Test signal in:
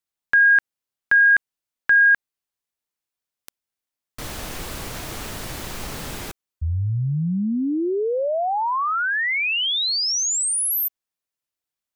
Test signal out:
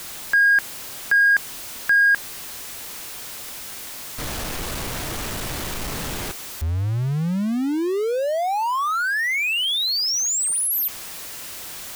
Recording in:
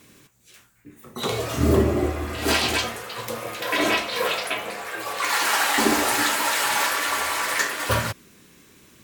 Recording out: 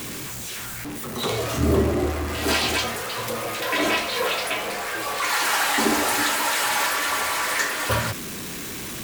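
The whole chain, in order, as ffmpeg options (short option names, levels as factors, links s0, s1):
-af "aeval=exprs='val(0)+0.5*0.0562*sgn(val(0))':c=same,volume=0.75"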